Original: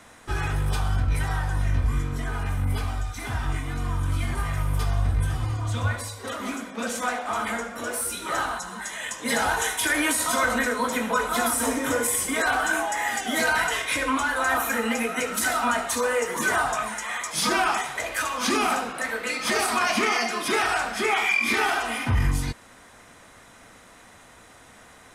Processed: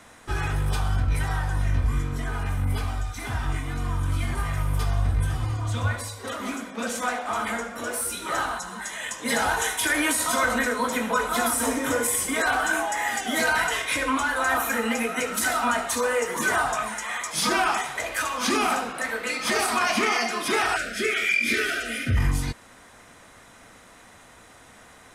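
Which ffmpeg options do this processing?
-filter_complex "[0:a]asettb=1/sr,asplit=3[s0][s1][s2];[s0]atrim=end=20.764[s3];[s1]atrim=start=20.76:end=22.17,asetpts=PTS-STARTPTS,afade=t=in:d=0.004:c=qsin,afade=t=out:st=1.406:d=0.004:c=qsin,asuperstop=centerf=930:order=8:qfactor=1.3[s4];[s2]atrim=start=22.166[s5];[s3][s4]acrossfade=d=0.004:c1=hsin:c2=qsin[s6];[s6][s5]acrossfade=d=0.004:c1=qsin:c2=hsin"

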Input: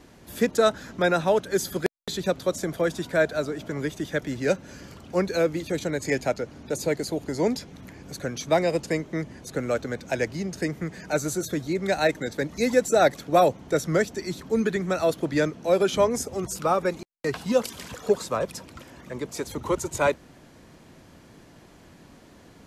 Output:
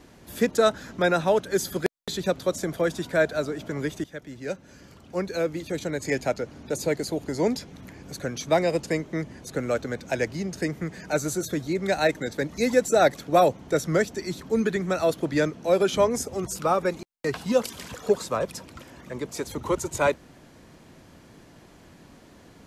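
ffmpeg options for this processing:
-filter_complex "[0:a]asplit=2[s0][s1];[s0]atrim=end=4.04,asetpts=PTS-STARTPTS,afade=t=out:st=4.036:d=0.004:c=hsin:silence=0.237137[s2];[s1]atrim=start=4.04,asetpts=PTS-STARTPTS,afade=t=in:d=2.4:silence=0.237137[s3];[s2][s3]concat=n=2:v=0:a=1"

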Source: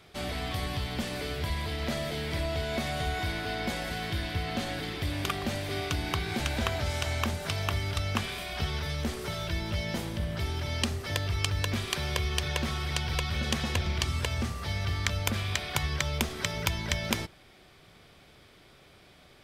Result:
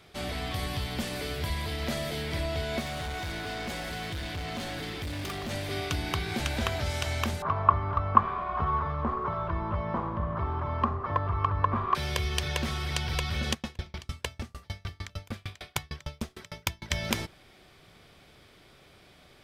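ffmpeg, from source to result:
-filter_complex "[0:a]asettb=1/sr,asplit=3[s0][s1][s2];[s0]atrim=end=0.594[s3];[s1]atrim=start=0.59:end=2.23,asetpts=PTS-STARTPTS,afade=t=in:d=0.004:c=qsin,afade=t=out:st=1.636:d=0.004:c=qsin,highshelf=f=7700:g=4.5[s4];[s2]atrim=start=2.226[s5];[s3][s4]acrossfade=d=0.004:c1=hsin:c2=qsin[s6];[s6][s5]acrossfade=d=0.004:c1=qsin:c2=hsin,asettb=1/sr,asplit=3[s7][s8][s9];[s7]atrim=end=2.804[s10];[s8]atrim=start=2.8:end=5.51,asetpts=PTS-STARTPTS,afade=t=in:d=0.004:c=qsin,afade=t=out:st=2.706:d=0.004:c=qsin,asoftclip=type=hard:threshold=0.0251[s11];[s9]atrim=start=5.506[s12];[s10][s11]acrossfade=d=0.004:c1=hsin:c2=qsin[s13];[s13][s12]acrossfade=d=0.004:c1=qsin:c2=hsin,asettb=1/sr,asplit=3[s14][s15][s16];[s14]atrim=end=7.424[s17];[s15]atrim=start=7.42:end=11.95,asetpts=PTS-STARTPTS,afade=t=in:d=0.004:c=qsin,afade=t=out:st=4.526:d=0.004:c=qsin,lowpass=f=1100:t=q:w=12[s18];[s16]atrim=start=11.946[s19];[s17][s18]acrossfade=d=0.004:c1=hsin:c2=qsin[s20];[s20][s19]acrossfade=d=0.004:c1=qsin:c2=hsin,asplit=3[s21][s22][s23];[s21]afade=t=out:st=13.53:d=0.02[s24];[s22]aeval=exprs='val(0)*pow(10,-36*if(lt(mod(6.6*n/s,1),2*abs(6.6)/1000),1-mod(6.6*n/s,1)/(2*abs(6.6)/1000),(mod(6.6*n/s,1)-2*abs(6.6)/1000)/(1-2*abs(6.6)/1000))/20)':c=same,afade=t=in:st=13.53:d=0.02,afade=t=out:st=16.9:d=0.02[s25];[s23]afade=t=in:st=16.9:d=0.02[s26];[s24][s25][s26]amix=inputs=3:normalize=0"

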